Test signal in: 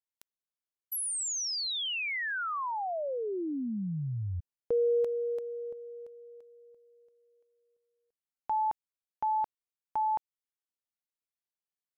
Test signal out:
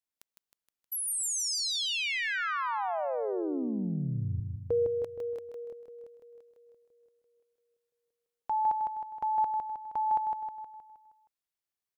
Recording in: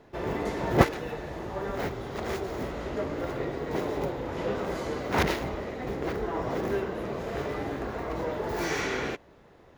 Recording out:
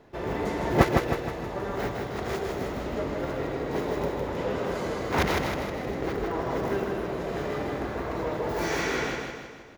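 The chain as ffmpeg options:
ffmpeg -i in.wav -af "aecho=1:1:157|314|471|628|785|942|1099:0.631|0.328|0.171|0.0887|0.0461|0.024|0.0125" out.wav

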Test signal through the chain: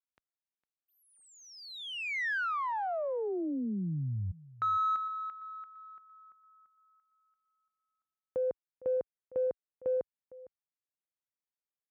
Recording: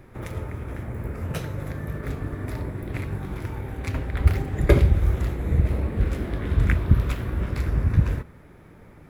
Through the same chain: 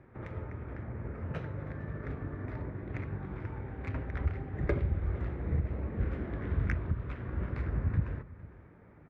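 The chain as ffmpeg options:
ffmpeg -i in.wav -af "highshelf=frequency=3300:gain=-10,alimiter=limit=-11dB:level=0:latency=1:release=458,highpass=52,equalizer=frequency=1800:width_type=o:width=1.2:gain=4.5,aecho=1:1:457:0.112,adynamicsmooth=sensitivity=1:basefreq=2900,volume=-7.5dB" out.wav

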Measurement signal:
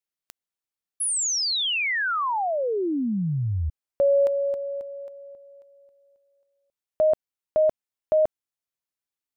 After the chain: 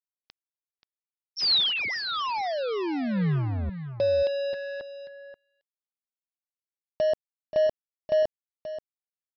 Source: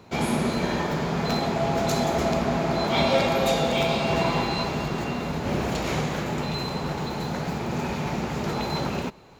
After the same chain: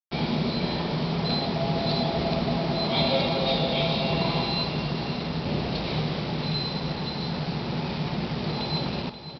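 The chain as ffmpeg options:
ffmpeg -i in.wav -af "equalizer=frequency=160:width_type=o:width=0.67:gain=5,equalizer=frequency=1600:width_type=o:width=0.67:gain=-8,equalizer=frequency=4000:width_type=o:width=0.67:gain=8,aresample=11025,acrusher=bits=4:mix=0:aa=0.5,aresample=44100,aecho=1:1:531:0.266,volume=-3.5dB" out.wav

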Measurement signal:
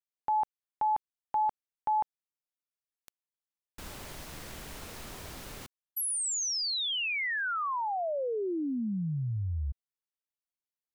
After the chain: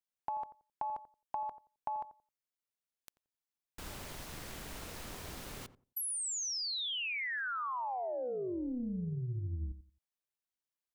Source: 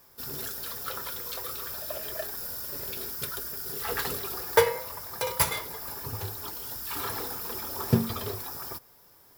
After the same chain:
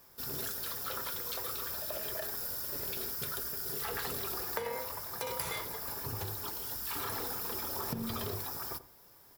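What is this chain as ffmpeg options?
ffmpeg -i in.wav -filter_complex "[0:a]acompressor=threshold=-35dB:ratio=16:attack=14:release=35:knee=1:detection=peak,tremolo=f=250:d=0.4,asplit=2[link_01][link_02];[link_02]adelay=88,lowpass=frequency=830:poles=1,volume=-12dB,asplit=2[link_03][link_04];[link_04]adelay=88,lowpass=frequency=830:poles=1,volume=0.23,asplit=2[link_05][link_06];[link_06]adelay=88,lowpass=frequency=830:poles=1,volume=0.23[link_07];[link_01][link_03][link_05][link_07]amix=inputs=4:normalize=0" out.wav

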